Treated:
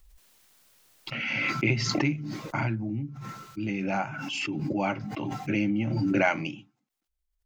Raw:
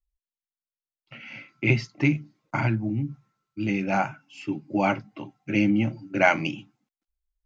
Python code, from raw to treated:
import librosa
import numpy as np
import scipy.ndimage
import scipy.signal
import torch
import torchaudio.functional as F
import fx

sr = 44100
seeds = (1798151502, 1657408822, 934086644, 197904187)

y = fx.pre_swell(x, sr, db_per_s=20.0)
y = y * librosa.db_to_amplitude(-5.5)